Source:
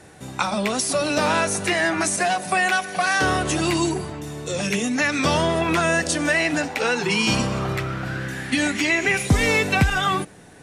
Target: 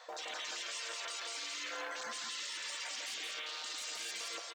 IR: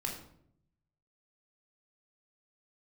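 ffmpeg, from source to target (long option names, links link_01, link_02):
-af "afftfilt=real='re*between(b*sr/4096,200,3500)':imag='im*between(b*sr/4096,200,3500)':win_size=4096:overlap=0.75,afwtdn=0.0355,afftfilt=real='re*lt(hypot(re,im),0.0891)':imag='im*lt(hypot(re,im),0.0891)':win_size=1024:overlap=0.75,bandreject=frequency=360:width=12,adynamicequalizer=threshold=0.00316:dfrequency=1400:dqfactor=0.8:tfrequency=1400:tqfactor=0.8:attack=5:release=100:ratio=0.375:range=2.5:mode=boostabove:tftype=bell,areverse,acompressor=threshold=-44dB:ratio=5,areverse,alimiter=level_in=20.5dB:limit=-24dB:level=0:latency=1:release=114,volume=-20.5dB,acrusher=bits=7:mode=log:mix=0:aa=0.000001,aecho=1:1:400:0.708,asetrate=103194,aresample=44100,volume=10dB"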